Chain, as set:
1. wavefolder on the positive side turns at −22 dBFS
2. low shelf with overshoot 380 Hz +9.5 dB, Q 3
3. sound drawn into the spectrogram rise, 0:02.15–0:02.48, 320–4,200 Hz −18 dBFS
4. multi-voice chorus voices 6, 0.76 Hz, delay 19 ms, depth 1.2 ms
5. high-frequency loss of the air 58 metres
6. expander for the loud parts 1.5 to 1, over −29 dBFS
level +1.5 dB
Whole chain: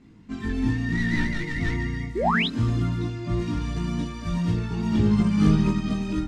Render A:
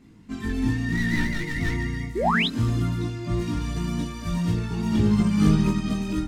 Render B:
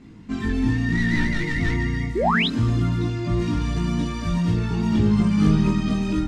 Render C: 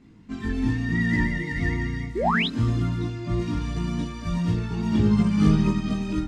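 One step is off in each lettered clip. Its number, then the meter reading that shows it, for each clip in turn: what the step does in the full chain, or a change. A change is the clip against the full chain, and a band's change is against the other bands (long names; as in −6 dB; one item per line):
5, 8 kHz band +4.5 dB
6, change in momentary loudness spread −3 LU
1, distortion level −13 dB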